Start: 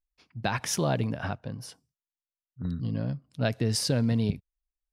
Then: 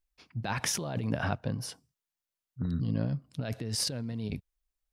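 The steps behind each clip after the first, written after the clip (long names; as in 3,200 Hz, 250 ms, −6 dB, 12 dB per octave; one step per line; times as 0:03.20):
compressor whose output falls as the input rises −32 dBFS, ratio −1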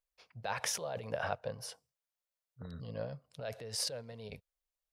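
low shelf with overshoot 390 Hz −8.5 dB, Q 3
level −4.5 dB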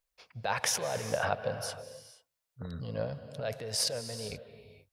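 convolution reverb, pre-delay 147 ms, DRR 10.5 dB
level +5.5 dB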